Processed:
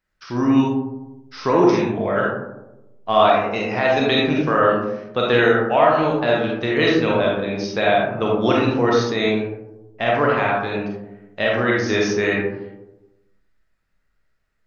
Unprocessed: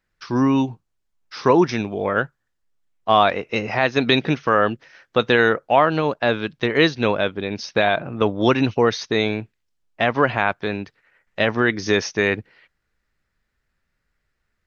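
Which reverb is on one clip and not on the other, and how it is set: digital reverb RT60 1 s, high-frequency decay 0.3×, pre-delay 5 ms, DRR -3.5 dB; gain -4.5 dB

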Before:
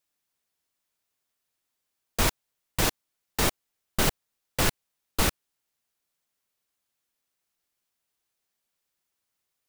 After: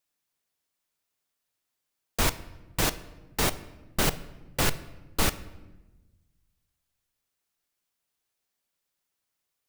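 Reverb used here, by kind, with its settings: shoebox room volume 600 m³, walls mixed, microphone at 0.31 m; gain -1 dB

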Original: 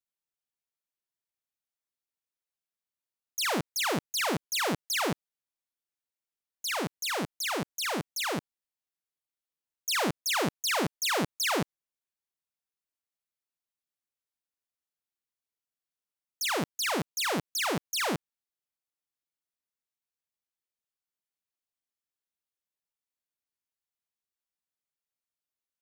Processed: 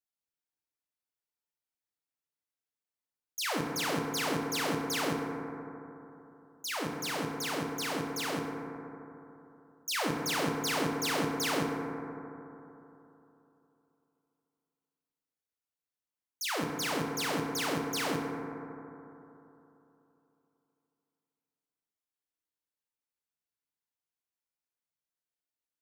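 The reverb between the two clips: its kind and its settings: FDN reverb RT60 3.2 s, high-frequency decay 0.25×, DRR 0.5 dB; gain -5 dB

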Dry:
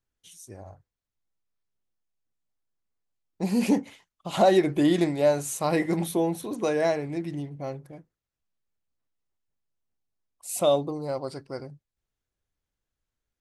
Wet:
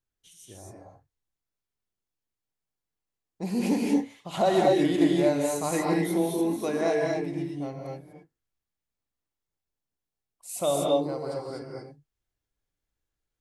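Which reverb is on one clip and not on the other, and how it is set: non-linear reverb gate 0.27 s rising, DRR -1.5 dB; gain -4.5 dB

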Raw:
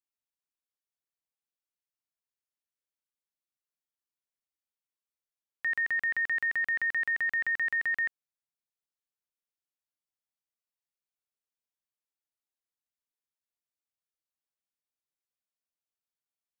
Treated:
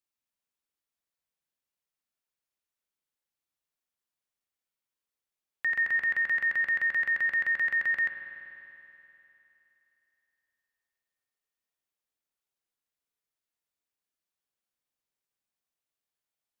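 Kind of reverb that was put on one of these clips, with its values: spring tank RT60 3.2 s, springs 48 ms, chirp 60 ms, DRR 3 dB; gain +2 dB

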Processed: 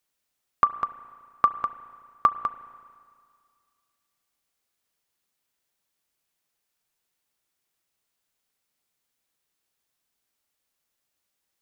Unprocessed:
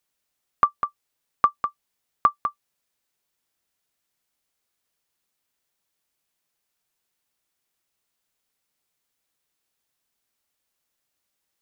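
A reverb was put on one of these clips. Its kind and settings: spring tank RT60 2.1 s, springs 32/36 ms, chirp 65 ms, DRR 13.5 dB; gain -1 dB

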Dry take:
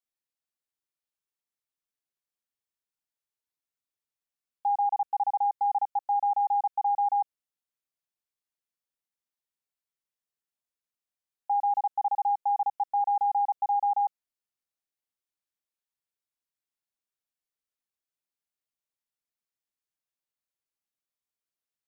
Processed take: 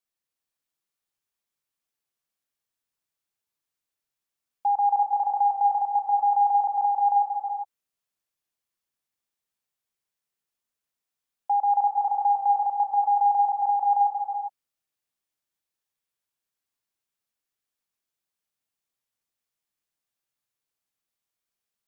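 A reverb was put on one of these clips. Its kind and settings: non-linear reverb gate 0.43 s rising, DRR 2 dB; gain +3 dB

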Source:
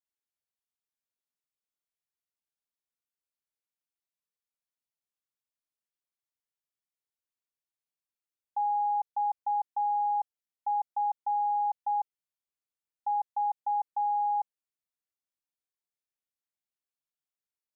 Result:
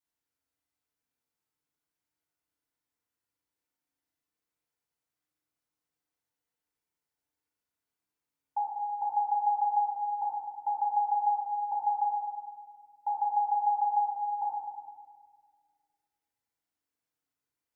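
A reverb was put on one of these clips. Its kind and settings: FDN reverb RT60 1.7 s, low-frequency decay 1.5×, high-frequency decay 0.25×, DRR -7.5 dB; gain -1.5 dB

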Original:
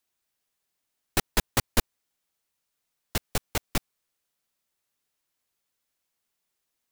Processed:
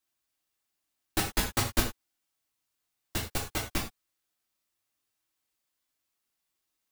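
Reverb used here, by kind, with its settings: non-linear reverb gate 0.13 s falling, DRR -2 dB; gain -6 dB

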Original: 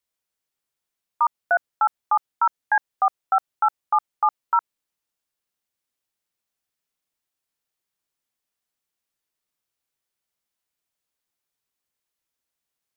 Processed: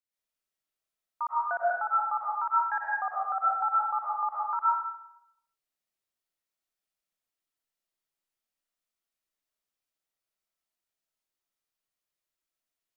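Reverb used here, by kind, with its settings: digital reverb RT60 0.78 s, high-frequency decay 0.8×, pre-delay 80 ms, DRR -7 dB; gain -12.5 dB

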